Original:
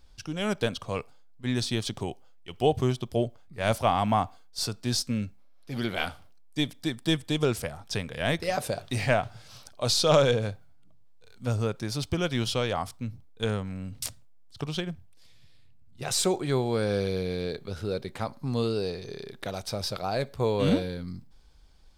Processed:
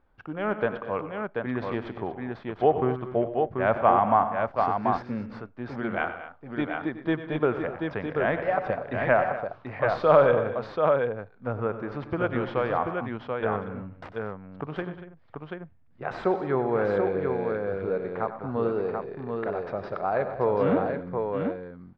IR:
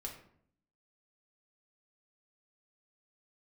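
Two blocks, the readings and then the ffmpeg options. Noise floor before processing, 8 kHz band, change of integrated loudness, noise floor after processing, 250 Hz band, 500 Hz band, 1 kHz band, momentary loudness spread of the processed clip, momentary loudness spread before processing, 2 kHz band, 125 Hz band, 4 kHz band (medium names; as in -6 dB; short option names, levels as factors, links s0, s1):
-51 dBFS, under -35 dB, +2.0 dB, -53 dBFS, +0.5 dB, +4.5 dB, +6.0 dB, 13 LU, 13 LU, +3.0 dB, -4.5 dB, -17.0 dB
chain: -filter_complex "[0:a]aemphasis=mode=production:type=riaa,asplit=2[s0][s1];[s1]adynamicsmooth=sensitivity=6.5:basefreq=620,volume=0.631[s2];[s0][s2]amix=inputs=2:normalize=0,lowpass=f=1600:w=0.5412,lowpass=f=1600:w=1.3066,aecho=1:1:95|118|192|237|735:0.224|0.158|0.15|0.178|0.596,volume=1.12"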